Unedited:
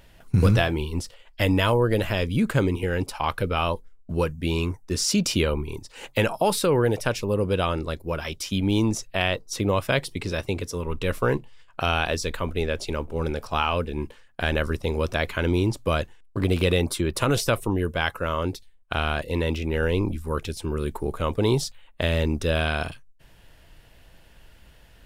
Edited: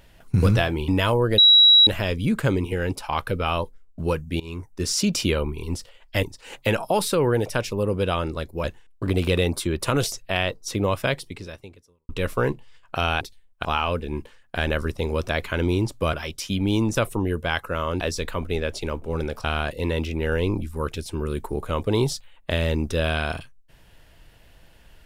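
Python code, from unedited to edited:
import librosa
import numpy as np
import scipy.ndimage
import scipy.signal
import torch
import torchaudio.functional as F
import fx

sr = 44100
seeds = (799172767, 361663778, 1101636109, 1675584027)

y = fx.edit(x, sr, fx.move(start_s=0.88, length_s=0.6, to_s=5.74),
    fx.insert_tone(at_s=1.98, length_s=0.49, hz=3880.0, db=-9.5),
    fx.fade_in_from(start_s=4.51, length_s=0.36, floor_db=-22.0),
    fx.swap(start_s=8.15, length_s=0.82, other_s=15.98, other_length_s=1.48),
    fx.fade_out_span(start_s=9.89, length_s=1.05, curve='qua'),
    fx.swap(start_s=12.06, length_s=1.44, other_s=18.51, other_length_s=0.44), tone=tone)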